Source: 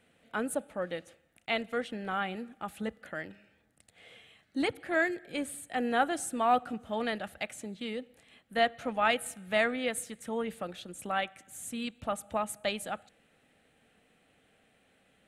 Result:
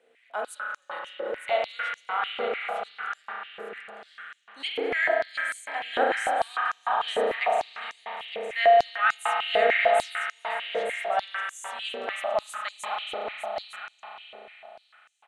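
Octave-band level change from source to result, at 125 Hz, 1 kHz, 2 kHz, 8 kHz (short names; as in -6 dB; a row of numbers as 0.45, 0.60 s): under -10 dB, +7.0 dB, +7.0 dB, -3.0 dB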